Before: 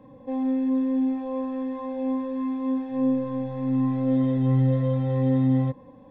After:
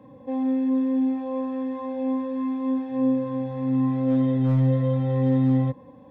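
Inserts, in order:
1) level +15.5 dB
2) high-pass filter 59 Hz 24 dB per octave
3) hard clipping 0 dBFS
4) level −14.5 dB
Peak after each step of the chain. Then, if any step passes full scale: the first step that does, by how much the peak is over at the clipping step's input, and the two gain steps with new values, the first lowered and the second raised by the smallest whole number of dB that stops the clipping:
+2.5, +3.0, 0.0, −14.5 dBFS
step 1, 3.0 dB
step 1 +12.5 dB, step 4 −11.5 dB

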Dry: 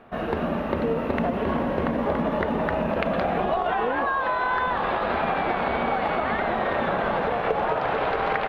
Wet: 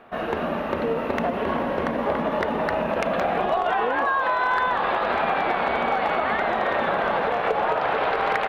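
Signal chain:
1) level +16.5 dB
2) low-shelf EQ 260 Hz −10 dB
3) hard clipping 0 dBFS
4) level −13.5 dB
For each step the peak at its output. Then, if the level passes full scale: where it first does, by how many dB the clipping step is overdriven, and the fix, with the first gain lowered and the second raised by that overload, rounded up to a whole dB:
+9.0, +9.0, 0.0, −13.5 dBFS
step 1, 9.0 dB
step 1 +7.5 dB, step 4 −4.5 dB

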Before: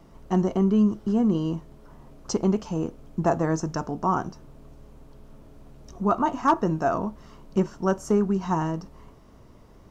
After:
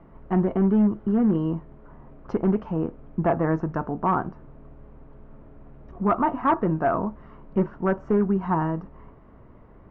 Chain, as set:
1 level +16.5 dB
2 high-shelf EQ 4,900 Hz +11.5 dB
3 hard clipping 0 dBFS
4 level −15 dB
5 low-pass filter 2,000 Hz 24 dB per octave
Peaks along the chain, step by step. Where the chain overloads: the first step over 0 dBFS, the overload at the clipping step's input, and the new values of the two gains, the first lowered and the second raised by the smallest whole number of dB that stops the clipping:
+5.5, +7.0, 0.0, −15.0, −13.5 dBFS
step 1, 7.0 dB
step 1 +9.5 dB, step 4 −8 dB

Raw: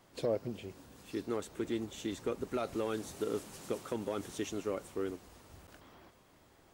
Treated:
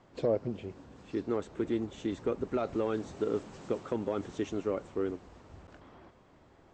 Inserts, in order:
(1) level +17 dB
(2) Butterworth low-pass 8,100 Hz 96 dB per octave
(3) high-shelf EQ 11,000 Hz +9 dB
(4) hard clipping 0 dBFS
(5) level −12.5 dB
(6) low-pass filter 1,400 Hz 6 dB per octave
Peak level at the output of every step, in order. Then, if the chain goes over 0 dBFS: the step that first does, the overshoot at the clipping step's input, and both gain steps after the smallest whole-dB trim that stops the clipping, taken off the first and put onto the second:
−5.5, −5.5, −5.5, −5.5, −18.0, −18.5 dBFS
no step passes full scale

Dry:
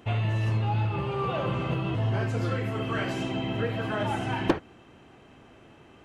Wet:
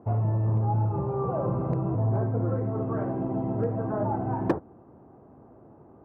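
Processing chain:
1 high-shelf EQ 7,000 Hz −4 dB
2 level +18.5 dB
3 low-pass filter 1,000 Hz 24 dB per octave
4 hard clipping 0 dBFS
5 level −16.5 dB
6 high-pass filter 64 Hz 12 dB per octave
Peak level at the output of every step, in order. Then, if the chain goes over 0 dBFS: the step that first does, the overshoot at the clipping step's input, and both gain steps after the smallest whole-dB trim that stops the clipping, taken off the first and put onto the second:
−14.0, +4.5, +6.0, 0.0, −16.5, −13.0 dBFS
step 2, 6.0 dB
step 2 +12.5 dB, step 5 −10.5 dB

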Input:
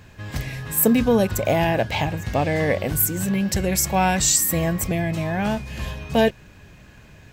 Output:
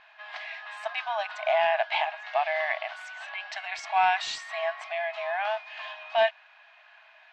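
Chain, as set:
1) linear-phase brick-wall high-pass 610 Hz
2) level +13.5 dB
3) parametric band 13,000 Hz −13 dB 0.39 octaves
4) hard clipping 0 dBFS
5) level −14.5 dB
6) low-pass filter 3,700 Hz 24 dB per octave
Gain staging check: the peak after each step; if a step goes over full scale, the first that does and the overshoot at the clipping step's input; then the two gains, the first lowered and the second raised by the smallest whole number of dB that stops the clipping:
−6.0, +7.5, +6.0, 0.0, −14.5, −13.5 dBFS
step 2, 6.0 dB
step 2 +7.5 dB, step 5 −8.5 dB

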